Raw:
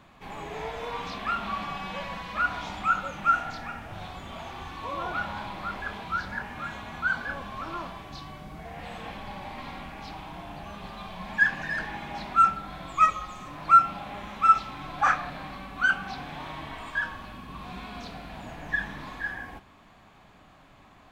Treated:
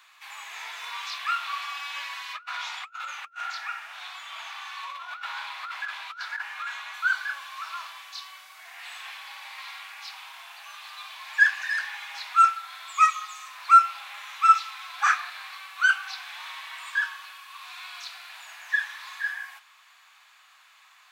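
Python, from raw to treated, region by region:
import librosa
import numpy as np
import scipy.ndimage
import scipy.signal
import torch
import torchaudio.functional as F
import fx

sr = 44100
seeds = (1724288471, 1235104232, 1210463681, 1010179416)

y = fx.chain(x, sr, fx.high_shelf(hz=5700.0, db=-10.5),
    fx.over_compress(threshold_db=-35.0, ratio=-0.5),
    fx.hum_notches(base_hz=60, count=8), at=(2.33, 6.94))
y = scipy.signal.sosfilt(scipy.signal.butter(4, 1100.0, 'highpass', fs=sr, output='sos'), y)
y = fx.high_shelf(y, sr, hz=2400.0, db=10.0)
y = fx.notch(y, sr, hz=3200.0, q=26.0)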